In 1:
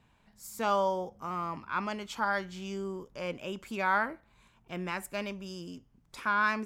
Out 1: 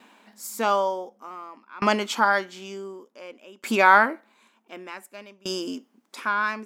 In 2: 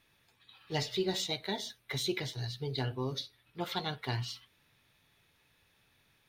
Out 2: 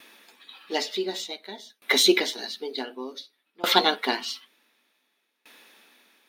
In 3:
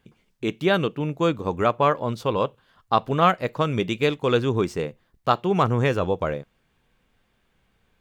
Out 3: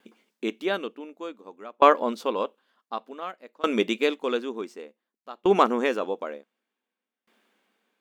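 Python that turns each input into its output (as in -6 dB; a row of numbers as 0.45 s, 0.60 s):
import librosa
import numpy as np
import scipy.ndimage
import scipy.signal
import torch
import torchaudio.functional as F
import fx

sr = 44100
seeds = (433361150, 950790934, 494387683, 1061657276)

y = fx.brickwall_highpass(x, sr, low_hz=200.0)
y = fx.tremolo_decay(y, sr, direction='decaying', hz=0.55, depth_db=27)
y = y * 10.0 ** (-3 / 20.0) / np.max(np.abs(y))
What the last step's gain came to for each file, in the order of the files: +16.5 dB, +19.0 dB, +4.5 dB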